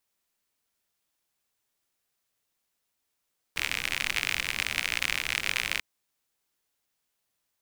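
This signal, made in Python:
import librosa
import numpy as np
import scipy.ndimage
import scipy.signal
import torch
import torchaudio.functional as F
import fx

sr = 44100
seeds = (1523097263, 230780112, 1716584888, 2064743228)

y = fx.rain(sr, seeds[0], length_s=2.24, drops_per_s=63.0, hz=2300.0, bed_db=-13)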